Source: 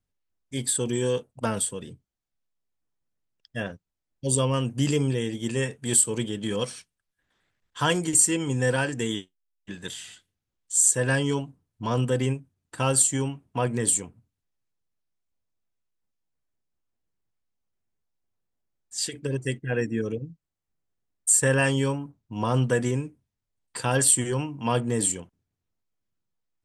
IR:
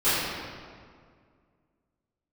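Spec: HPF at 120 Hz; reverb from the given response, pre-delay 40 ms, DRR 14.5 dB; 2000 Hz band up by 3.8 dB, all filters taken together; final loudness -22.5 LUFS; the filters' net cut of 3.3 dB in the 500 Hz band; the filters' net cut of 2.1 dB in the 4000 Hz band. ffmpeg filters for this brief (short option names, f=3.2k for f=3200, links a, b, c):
-filter_complex "[0:a]highpass=120,equalizer=f=500:t=o:g=-4,equalizer=f=2k:t=o:g=6.5,equalizer=f=4k:t=o:g=-6,asplit=2[a][b];[1:a]atrim=start_sample=2205,adelay=40[c];[b][c]afir=irnorm=-1:irlink=0,volume=-31.5dB[d];[a][d]amix=inputs=2:normalize=0,volume=3dB"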